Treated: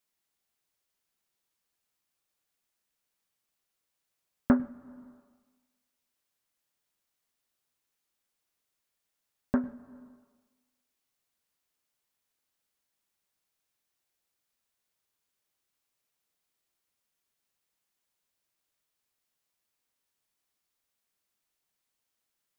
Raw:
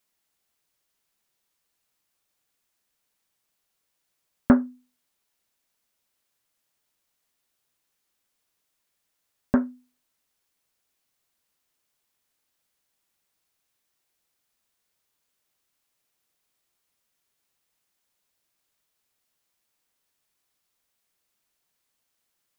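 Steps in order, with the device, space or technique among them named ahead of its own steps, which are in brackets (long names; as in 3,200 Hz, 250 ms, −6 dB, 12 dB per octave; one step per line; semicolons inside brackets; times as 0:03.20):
compressed reverb return (on a send at −9 dB: convolution reverb RT60 1.3 s, pre-delay 97 ms + downward compressor 4 to 1, threshold −30 dBFS, peak gain reduction 14.5 dB)
on the sum: level −6 dB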